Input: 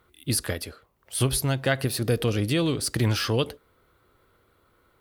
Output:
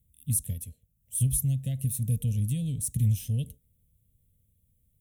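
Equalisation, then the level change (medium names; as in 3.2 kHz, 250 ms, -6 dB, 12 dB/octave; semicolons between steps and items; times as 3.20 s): Chebyshev band-stop 180–7100 Hz, order 2; static phaser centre 1.3 kHz, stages 6; +2.0 dB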